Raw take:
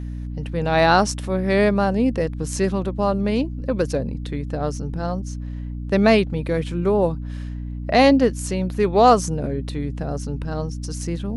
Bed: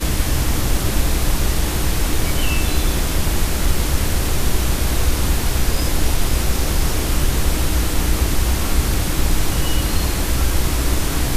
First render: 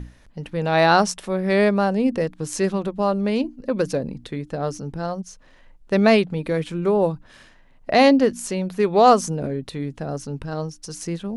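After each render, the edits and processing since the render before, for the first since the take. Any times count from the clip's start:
mains-hum notches 60/120/180/240/300 Hz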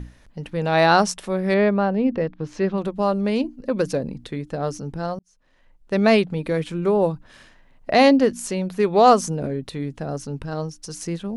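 0:01.54–0:02.78: high-frequency loss of the air 240 metres
0:05.19–0:06.19: fade in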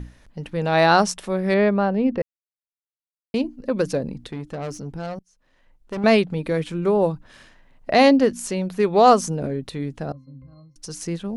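0:02.22–0:03.34: silence
0:04.28–0:06.04: tube saturation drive 25 dB, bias 0.25
0:10.12–0:10.76: resonances in every octave C, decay 0.39 s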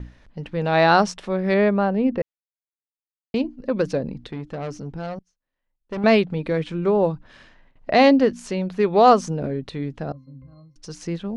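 low-pass filter 4,800 Hz 12 dB per octave
noise gate with hold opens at −44 dBFS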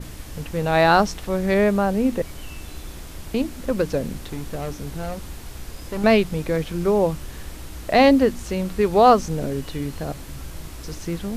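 mix in bed −18 dB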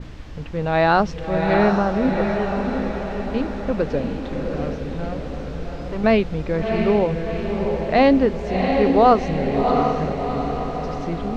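high-frequency loss of the air 180 metres
feedback delay with all-pass diffusion 708 ms, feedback 55%, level −4 dB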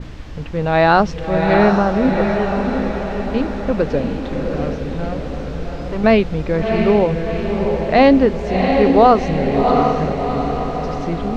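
level +4 dB
brickwall limiter −1 dBFS, peak gain reduction 2 dB

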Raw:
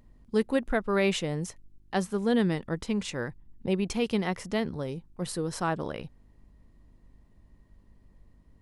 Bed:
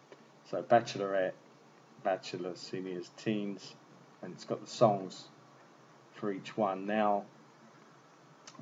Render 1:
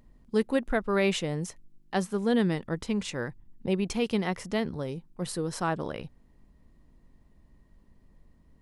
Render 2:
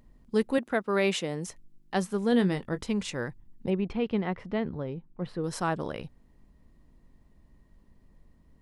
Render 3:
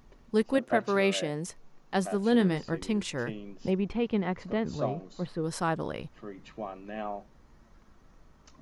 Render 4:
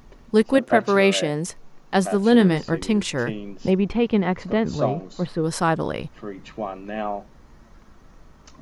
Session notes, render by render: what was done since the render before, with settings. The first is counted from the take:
hum removal 50 Hz, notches 2
0:00.58–0:01.47: high-pass filter 180 Hz; 0:02.30–0:02.81: double-tracking delay 21 ms −11.5 dB; 0:03.70–0:05.44: high-frequency loss of the air 380 metres
mix in bed −6.5 dB
level +8.5 dB

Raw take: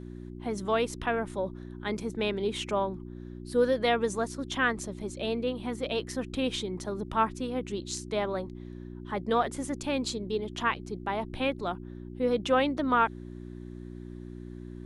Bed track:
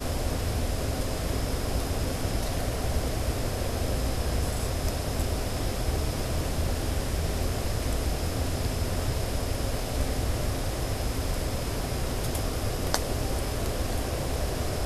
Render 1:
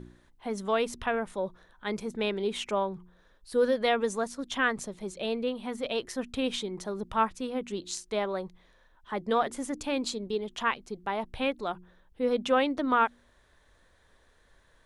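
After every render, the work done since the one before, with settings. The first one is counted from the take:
hum removal 60 Hz, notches 6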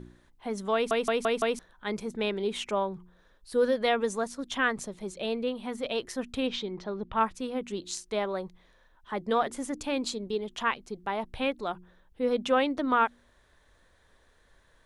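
0:00.74: stutter in place 0.17 s, 5 plays
0:06.46–0:07.19: low-pass filter 5,900 Hz → 3,500 Hz 24 dB per octave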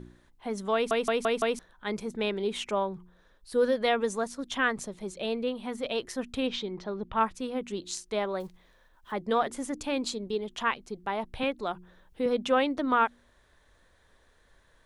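0:08.40–0:09.13: one scale factor per block 5 bits
0:11.43–0:12.26: multiband upward and downward compressor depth 40%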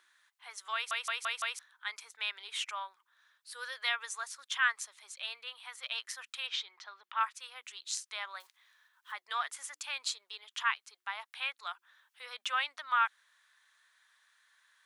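high-pass filter 1,200 Hz 24 dB per octave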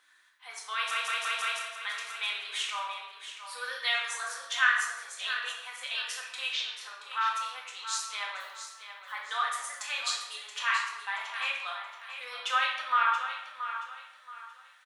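repeating echo 677 ms, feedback 31%, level −10.5 dB
rectangular room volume 470 cubic metres, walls mixed, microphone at 2 metres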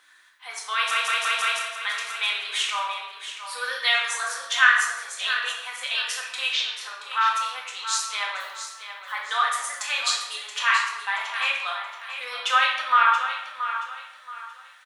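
level +7.5 dB

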